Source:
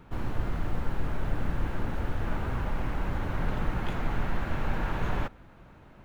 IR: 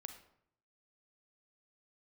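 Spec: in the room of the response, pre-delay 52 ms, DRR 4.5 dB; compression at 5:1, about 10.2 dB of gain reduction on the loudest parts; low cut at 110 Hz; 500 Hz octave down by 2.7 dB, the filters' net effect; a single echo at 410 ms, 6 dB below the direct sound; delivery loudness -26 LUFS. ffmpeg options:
-filter_complex "[0:a]highpass=110,equalizer=f=500:t=o:g=-3.5,acompressor=threshold=0.00708:ratio=5,aecho=1:1:410:0.501,asplit=2[s0][s1];[1:a]atrim=start_sample=2205,adelay=52[s2];[s1][s2]afir=irnorm=-1:irlink=0,volume=1[s3];[s0][s3]amix=inputs=2:normalize=0,volume=7.94"

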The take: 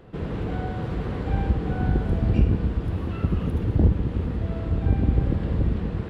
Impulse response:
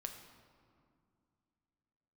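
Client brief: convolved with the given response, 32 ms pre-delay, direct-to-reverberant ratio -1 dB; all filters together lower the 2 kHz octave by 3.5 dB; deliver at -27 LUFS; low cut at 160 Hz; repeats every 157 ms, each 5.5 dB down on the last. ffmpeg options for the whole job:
-filter_complex "[0:a]highpass=160,equalizer=f=2000:t=o:g=-5,aecho=1:1:157|314|471|628|785|942|1099:0.531|0.281|0.149|0.079|0.0419|0.0222|0.0118,asplit=2[s0][s1];[1:a]atrim=start_sample=2205,adelay=32[s2];[s1][s2]afir=irnorm=-1:irlink=0,volume=1.5[s3];[s0][s3]amix=inputs=2:normalize=0,volume=0.794"

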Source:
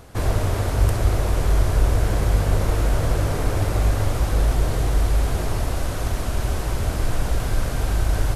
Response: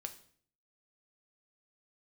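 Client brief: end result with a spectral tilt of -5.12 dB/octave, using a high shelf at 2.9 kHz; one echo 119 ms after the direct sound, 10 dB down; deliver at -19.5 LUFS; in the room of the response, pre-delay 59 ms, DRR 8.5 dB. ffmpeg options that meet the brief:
-filter_complex "[0:a]highshelf=f=2900:g=4,aecho=1:1:119:0.316,asplit=2[s0][s1];[1:a]atrim=start_sample=2205,adelay=59[s2];[s1][s2]afir=irnorm=-1:irlink=0,volume=0.531[s3];[s0][s3]amix=inputs=2:normalize=0,volume=1.19"

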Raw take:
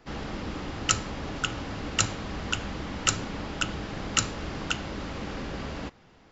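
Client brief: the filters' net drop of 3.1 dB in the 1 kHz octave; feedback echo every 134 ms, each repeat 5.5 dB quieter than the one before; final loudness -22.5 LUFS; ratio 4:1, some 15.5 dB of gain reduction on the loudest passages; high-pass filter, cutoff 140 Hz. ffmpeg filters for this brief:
-af "highpass=140,equalizer=f=1000:t=o:g=-4.5,acompressor=threshold=0.0126:ratio=4,aecho=1:1:134|268|402|536|670|804|938:0.531|0.281|0.149|0.079|0.0419|0.0222|0.0118,volume=7.08"

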